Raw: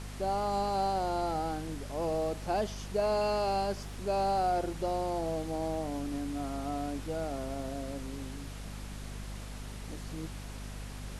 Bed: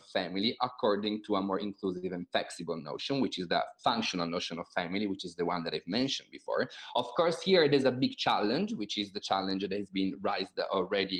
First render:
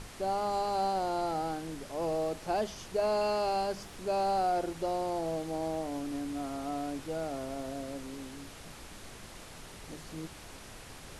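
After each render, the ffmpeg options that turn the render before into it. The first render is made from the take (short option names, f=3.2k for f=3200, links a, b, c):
-af "bandreject=f=50:t=h:w=6,bandreject=f=100:t=h:w=6,bandreject=f=150:t=h:w=6,bandreject=f=200:t=h:w=6,bandreject=f=250:t=h:w=6"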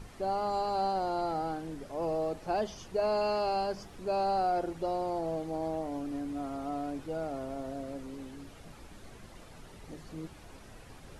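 -af "afftdn=nr=9:nf=-49"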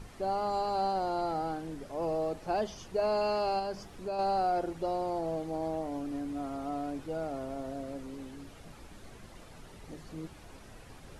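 -filter_complex "[0:a]asettb=1/sr,asplit=3[a][b][c];[a]atrim=end=3.594[d];[b]atrim=start=3.59:end=4.19,asetpts=PTS-STARTPTS,afade=t=in:d=0.004:c=qsin,afade=t=out:st=0.596:d=0.004:c=qsin,acompressor=threshold=-32dB:ratio=3:attack=3.2:release=140:knee=1:detection=peak[e];[c]atrim=start=4.186[f];[d][e]acrossfade=d=0.004:c1=hsin:c2=qsin[g];[g][f]acrossfade=d=0.004:c1=qsin:c2=hsin"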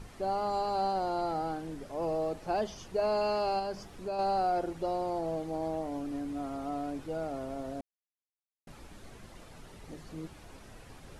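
-filter_complex "[0:a]asplit=3[a][b][c];[a]atrim=end=7.81,asetpts=PTS-STARTPTS,afade=t=out:st=7.806:d=0.004:c=hsin[d];[b]atrim=start=7.81:end=8.67,asetpts=PTS-STARTPTS,volume=0[e];[c]atrim=start=8.67,asetpts=PTS-STARTPTS,afade=t=in:d=0.004:c=hsin[f];[d][e][f]concat=n=3:v=0:a=1"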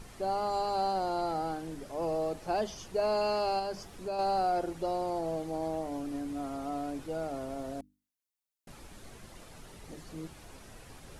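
-af "highshelf=f=5.3k:g=6,bandreject=f=50:t=h:w=6,bandreject=f=100:t=h:w=6,bandreject=f=150:t=h:w=6,bandreject=f=200:t=h:w=6,bandreject=f=250:t=h:w=6,bandreject=f=300:t=h:w=6"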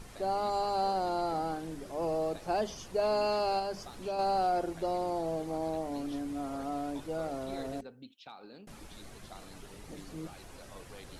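-filter_complex "[1:a]volume=-21.5dB[a];[0:a][a]amix=inputs=2:normalize=0"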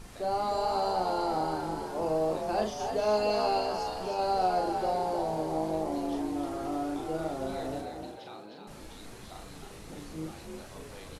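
-filter_complex "[0:a]asplit=2[a][b];[b]adelay=38,volume=-4dB[c];[a][c]amix=inputs=2:normalize=0,asplit=7[d][e][f][g][h][i][j];[e]adelay=307,afreqshift=50,volume=-6dB[k];[f]adelay=614,afreqshift=100,volume=-12.7dB[l];[g]adelay=921,afreqshift=150,volume=-19.5dB[m];[h]adelay=1228,afreqshift=200,volume=-26.2dB[n];[i]adelay=1535,afreqshift=250,volume=-33dB[o];[j]adelay=1842,afreqshift=300,volume=-39.7dB[p];[d][k][l][m][n][o][p]amix=inputs=7:normalize=0"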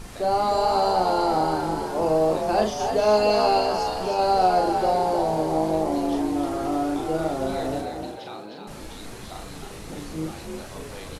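-af "volume=8dB"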